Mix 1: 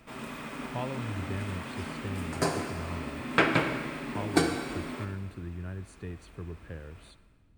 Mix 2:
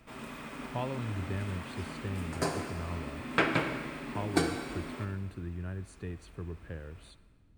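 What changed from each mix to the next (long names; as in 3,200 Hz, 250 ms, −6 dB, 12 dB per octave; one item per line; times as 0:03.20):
background −3.5 dB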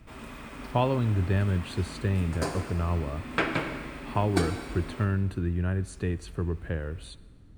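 speech +10.5 dB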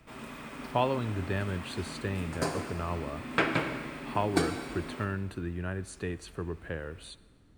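speech: add low-shelf EQ 220 Hz −11 dB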